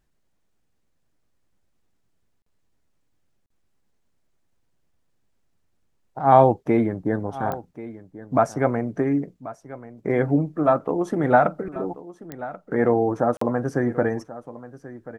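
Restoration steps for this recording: de-click; interpolate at 2.42/3.46/13.37 s, 44 ms; inverse comb 1085 ms -16.5 dB

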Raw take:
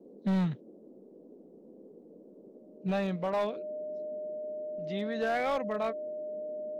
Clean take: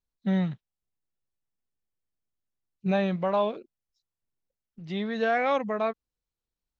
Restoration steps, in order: clip repair -24.5 dBFS; band-stop 610 Hz, Q 30; noise print and reduce 30 dB; trim 0 dB, from 2.78 s +4.5 dB

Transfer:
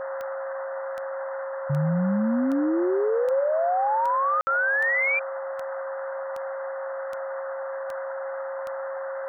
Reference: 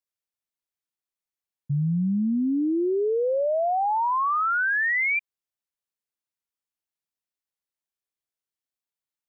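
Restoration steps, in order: de-click; band-stop 540 Hz, Q 30; room tone fill 4.41–4.47 s; noise print and reduce 30 dB

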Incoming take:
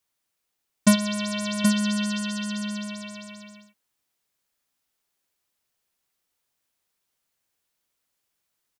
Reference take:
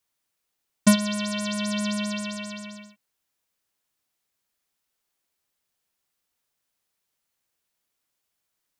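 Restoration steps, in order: inverse comb 776 ms -5.5 dB

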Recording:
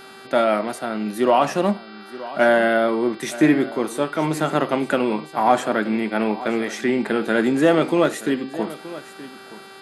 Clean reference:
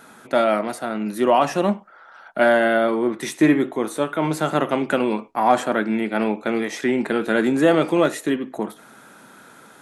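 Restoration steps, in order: de-hum 388.6 Hz, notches 13; inverse comb 924 ms -16.5 dB

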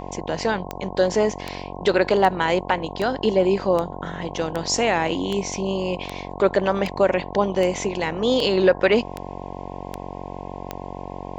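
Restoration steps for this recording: de-click; de-hum 46.4 Hz, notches 23; band-stop 720 Hz, Q 30

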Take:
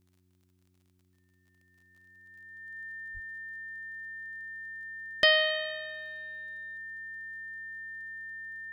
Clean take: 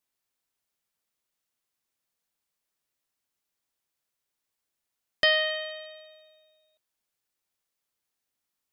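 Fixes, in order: de-click; de-hum 91.5 Hz, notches 4; band-stop 1.8 kHz, Q 30; 3.13–3.25 s: high-pass 140 Hz 24 dB/octave

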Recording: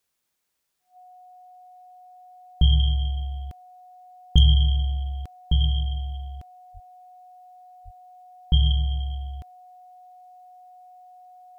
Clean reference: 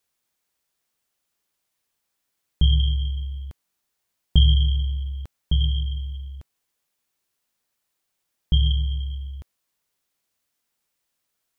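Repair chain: clip repair -6 dBFS; band-stop 730 Hz, Q 30; de-plosive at 6.73/7.84 s

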